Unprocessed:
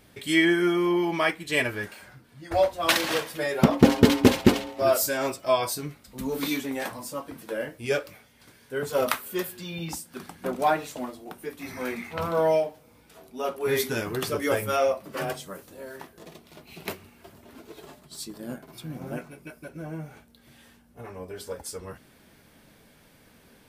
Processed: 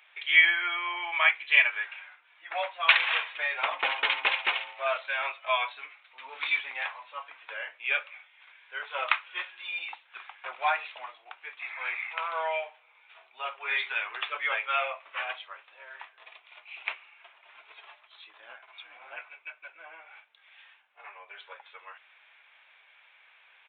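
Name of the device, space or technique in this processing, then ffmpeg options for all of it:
musical greeting card: -af "aresample=8000,aresample=44100,highpass=f=860:w=0.5412,highpass=f=860:w=1.3066,equalizer=f=2.4k:t=o:w=0.44:g=9"

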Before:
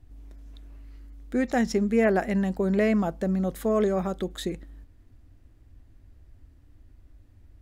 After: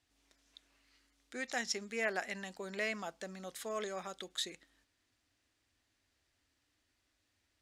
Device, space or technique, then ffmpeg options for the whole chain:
piezo pickup straight into a mixer: -af "lowpass=5.4k,aderivative,volume=7dB"

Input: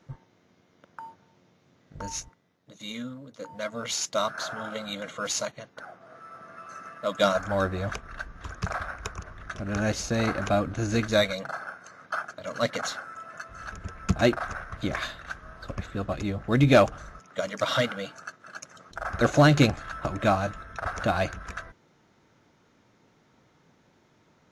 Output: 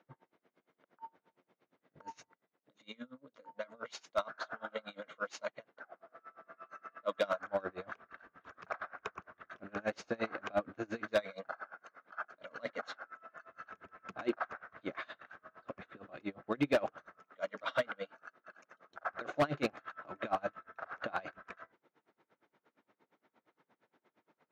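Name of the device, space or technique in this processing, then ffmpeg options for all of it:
helicopter radio: -af "highpass=310,lowpass=2.6k,aeval=exprs='val(0)*pow(10,-28*(0.5-0.5*cos(2*PI*8.6*n/s))/20)':c=same,asoftclip=type=hard:threshold=-21dB,volume=-2dB"

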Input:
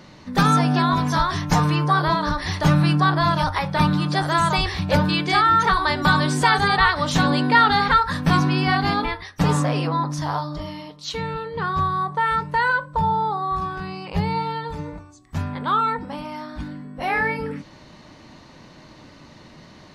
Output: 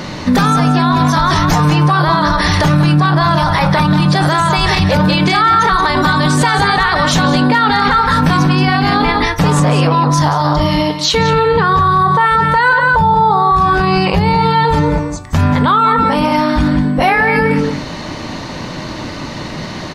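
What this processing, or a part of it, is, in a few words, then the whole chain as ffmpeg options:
loud club master: -filter_complex "[0:a]asplit=2[a][b];[b]adelay=180.8,volume=-9dB,highshelf=f=4k:g=-4.07[c];[a][c]amix=inputs=2:normalize=0,bandreject=f=70.81:t=h:w=4,bandreject=f=141.62:t=h:w=4,bandreject=f=212.43:t=h:w=4,bandreject=f=283.24:t=h:w=4,bandreject=f=354.05:t=h:w=4,acompressor=threshold=-22dB:ratio=3,asoftclip=type=hard:threshold=-14dB,alimiter=level_in=24dB:limit=-1dB:release=50:level=0:latency=1,volume=-3dB"

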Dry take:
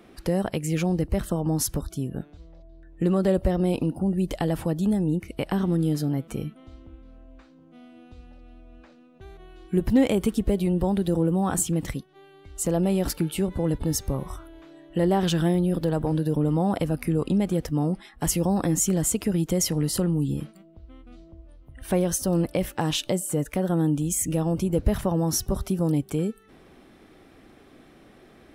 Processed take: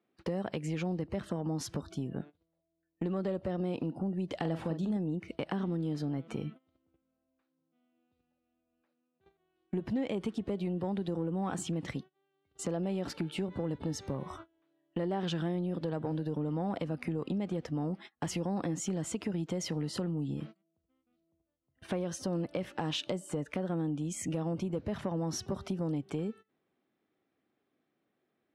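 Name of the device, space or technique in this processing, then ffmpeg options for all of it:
AM radio: -filter_complex "[0:a]agate=range=-26dB:threshold=-39dB:ratio=16:detection=peak,highpass=70,highpass=100,lowpass=4.4k,acompressor=threshold=-29dB:ratio=4,asoftclip=type=tanh:threshold=-20.5dB,lowshelf=f=150:g=-3,asettb=1/sr,asplit=3[a][b][c];[a]atrim=end=4.374[d];[b]atrim=start=4.37:end=4.97,asetpts=PTS-STARTPTS,afade=t=in:d=0.004:c=qsin,afade=t=out:st=0.596:d=0.004:c=qsin,asplit=2[e][f];[f]adelay=43,volume=-9dB[g];[e][g]amix=inputs=2:normalize=0,atrim=end_sample=26460[h];[c]atrim=start=4.966[i];[d][h]acrossfade=d=0.004:c1=hsin:c2=qsin[j];[j][i]acrossfade=d=0.004:c1=qsin:c2=hsin,volume=-1dB"

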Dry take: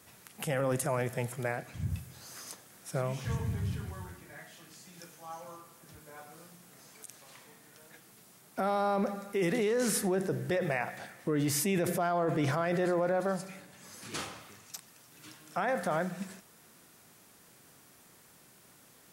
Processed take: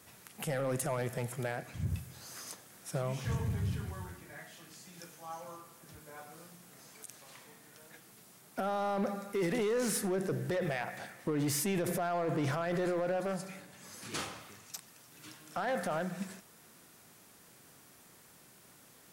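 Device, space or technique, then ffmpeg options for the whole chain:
limiter into clipper: -af "alimiter=limit=-22.5dB:level=0:latency=1:release=158,asoftclip=type=hard:threshold=-27.5dB"

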